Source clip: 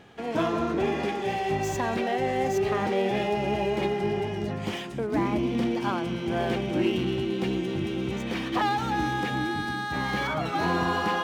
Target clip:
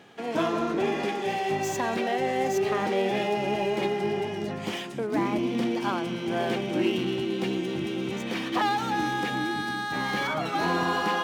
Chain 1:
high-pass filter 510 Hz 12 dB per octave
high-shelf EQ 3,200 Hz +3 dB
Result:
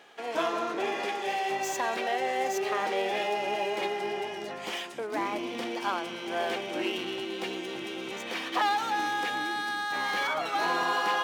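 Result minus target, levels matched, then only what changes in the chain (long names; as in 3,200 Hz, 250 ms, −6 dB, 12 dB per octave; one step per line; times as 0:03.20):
125 Hz band −14.0 dB
change: high-pass filter 160 Hz 12 dB per octave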